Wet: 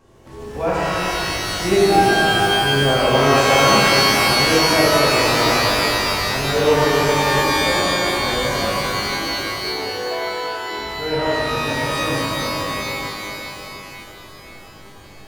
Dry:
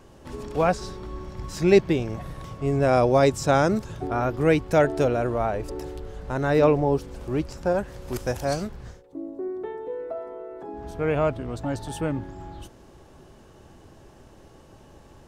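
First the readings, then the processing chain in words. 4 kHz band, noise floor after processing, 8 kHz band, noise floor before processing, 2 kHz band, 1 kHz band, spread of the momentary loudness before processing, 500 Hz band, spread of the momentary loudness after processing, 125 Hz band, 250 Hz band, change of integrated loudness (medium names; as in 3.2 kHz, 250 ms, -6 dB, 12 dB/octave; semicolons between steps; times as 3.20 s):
+23.0 dB, -41 dBFS, +16.5 dB, -51 dBFS, +15.5 dB, +10.5 dB, 18 LU, +4.5 dB, 12 LU, +3.5 dB, +4.0 dB, +7.5 dB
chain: pitch-shifted reverb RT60 3.3 s, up +12 st, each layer -2 dB, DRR -8 dB; trim -5.5 dB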